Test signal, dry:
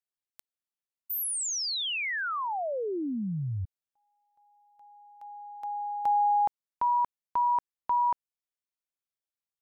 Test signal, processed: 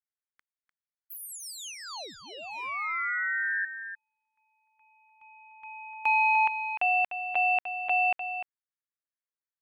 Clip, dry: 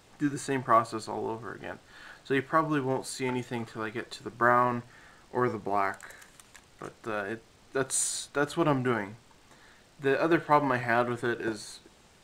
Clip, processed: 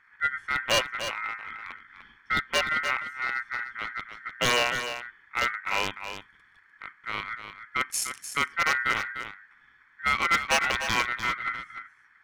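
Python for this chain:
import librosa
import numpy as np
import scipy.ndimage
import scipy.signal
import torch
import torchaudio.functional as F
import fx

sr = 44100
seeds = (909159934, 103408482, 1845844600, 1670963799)

p1 = fx.wiener(x, sr, points=41)
p2 = p1 * np.sin(2.0 * np.pi * 1700.0 * np.arange(len(p1)) / sr)
p3 = 10.0 ** (-19.5 / 20.0) * (np.abs((p2 / 10.0 ** (-19.5 / 20.0) + 3.0) % 4.0 - 2.0) - 1.0)
p4 = p3 + fx.echo_single(p3, sr, ms=299, db=-9.5, dry=0)
y = p4 * 10.0 ** (5.0 / 20.0)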